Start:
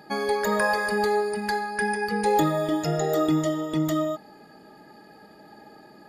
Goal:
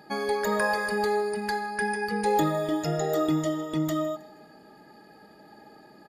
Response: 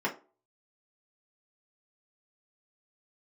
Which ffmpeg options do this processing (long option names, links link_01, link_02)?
-af "aecho=1:1:159|318|477:0.0891|0.0365|0.015,volume=-2.5dB"